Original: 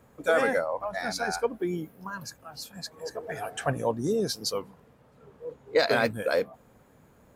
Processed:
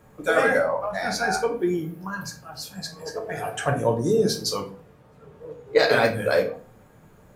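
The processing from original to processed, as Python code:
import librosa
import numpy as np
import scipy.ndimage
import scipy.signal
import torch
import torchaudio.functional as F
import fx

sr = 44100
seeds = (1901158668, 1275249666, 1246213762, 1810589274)

y = fx.room_shoebox(x, sr, seeds[0], volume_m3=31.0, walls='mixed', distance_m=0.44)
y = F.gain(torch.from_numpy(y), 2.5).numpy()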